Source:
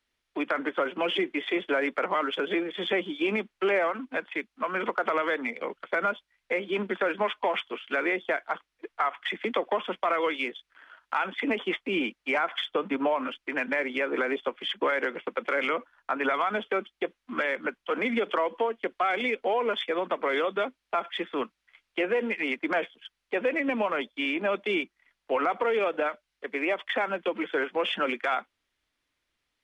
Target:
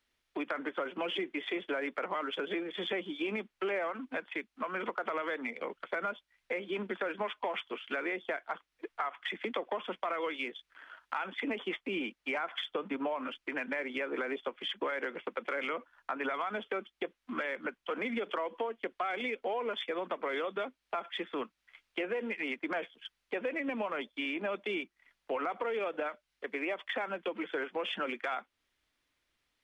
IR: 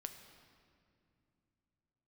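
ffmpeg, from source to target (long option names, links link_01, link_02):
-af "acompressor=threshold=-38dB:ratio=2"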